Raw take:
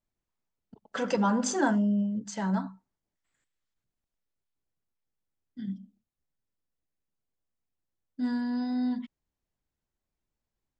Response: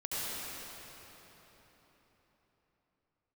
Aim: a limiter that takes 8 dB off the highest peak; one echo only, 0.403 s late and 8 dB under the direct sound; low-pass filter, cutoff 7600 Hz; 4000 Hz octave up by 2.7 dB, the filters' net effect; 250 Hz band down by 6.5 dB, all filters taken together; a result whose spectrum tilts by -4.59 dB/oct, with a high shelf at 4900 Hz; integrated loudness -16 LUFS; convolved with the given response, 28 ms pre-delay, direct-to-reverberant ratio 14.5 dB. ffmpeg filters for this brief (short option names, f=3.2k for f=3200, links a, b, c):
-filter_complex "[0:a]lowpass=7.6k,equalizer=f=250:t=o:g=-8,equalizer=f=4k:t=o:g=7.5,highshelf=f=4.9k:g=-6.5,alimiter=limit=-24dB:level=0:latency=1,aecho=1:1:403:0.398,asplit=2[a][b];[1:a]atrim=start_sample=2205,adelay=28[c];[b][c]afir=irnorm=-1:irlink=0,volume=-20.5dB[d];[a][d]amix=inputs=2:normalize=0,volume=19.5dB"